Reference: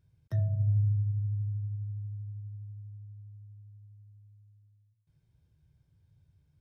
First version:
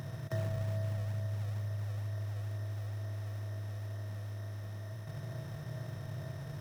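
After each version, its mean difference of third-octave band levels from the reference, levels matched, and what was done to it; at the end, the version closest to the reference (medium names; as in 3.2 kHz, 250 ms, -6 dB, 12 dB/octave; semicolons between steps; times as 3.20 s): 17.5 dB: spectral levelling over time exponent 0.2; high-pass 140 Hz 24 dB/octave; bass shelf 400 Hz -8 dB; in parallel at -5.5 dB: decimation with a swept rate 41×, swing 160% 2.2 Hz; on the sum: trim +4 dB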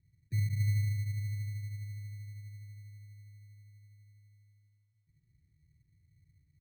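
3.5 dB: inverse Chebyshev low-pass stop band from 690 Hz, stop band 40 dB; sample-and-hold 21×; delay 140 ms -11 dB; trim -2 dB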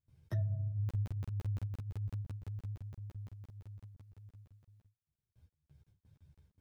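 6.5 dB: compression 2.5:1, threshold -39 dBFS, peak gain reduction 10.5 dB; gate with hold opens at -58 dBFS; crackling interface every 0.17 s, samples 2048, zero, from 0.89 s; three-phase chorus; trim +6 dB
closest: second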